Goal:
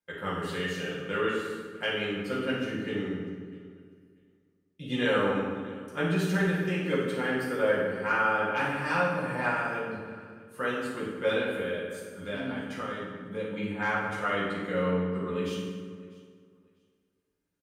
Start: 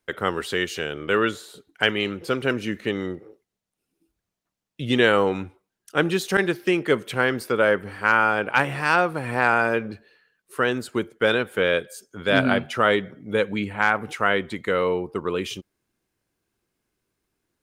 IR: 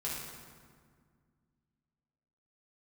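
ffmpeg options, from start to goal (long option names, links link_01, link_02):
-filter_complex "[0:a]asettb=1/sr,asplit=3[link_01][link_02][link_03];[link_01]atrim=end=11.544[link_04];[link_02]atrim=start=11.54:end=13.5,asetpts=PTS-STARTPTS,afade=type=in:duration=0.004:curve=qsin,afade=type=out:start_time=1.956:duration=0.004:curve=qsin,acompressor=threshold=-24dB:ratio=6[link_05];[link_03]atrim=start=13.496[link_06];[link_04][link_05]acrossfade=duration=0.004:curve1=hsin:curve2=qsin[link_07];[link_07][link_06]acrossfade=duration=0.004:curve1=qsin:curve2=hsin,aecho=1:1:645|1290:0.075|0.0142[link_08];[1:a]atrim=start_sample=2205,asetrate=52920,aresample=44100[link_09];[link_08][link_09]afir=irnorm=-1:irlink=0,volume=-9dB"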